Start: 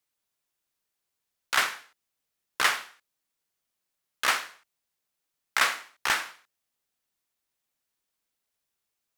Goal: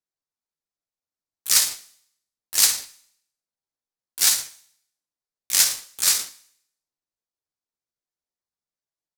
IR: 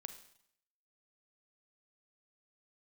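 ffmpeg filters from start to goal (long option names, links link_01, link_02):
-filter_complex "[0:a]aexciter=amount=13.3:drive=2.5:freq=3000,asplit=4[link_01][link_02][link_03][link_04];[link_02]asetrate=52444,aresample=44100,atempo=0.840896,volume=-5dB[link_05];[link_03]asetrate=55563,aresample=44100,atempo=0.793701,volume=-7dB[link_06];[link_04]asetrate=88200,aresample=44100,atempo=0.5,volume=-6dB[link_07];[link_01][link_05][link_06][link_07]amix=inputs=4:normalize=0,adynamicsmooth=sensitivity=7:basefreq=1200,asetrate=60591,aresample=44100,atempo=0.727827,asplit=2[link_08][link_09];[1:a]atrim=start_sample=2205[link_10];[link_09][link_10]afir=irnorm=-1:irlink=0,volume=-1.5dB[link_11];[link_08][link_11]amix=inputs=2:normalize=0,volume=-10dB"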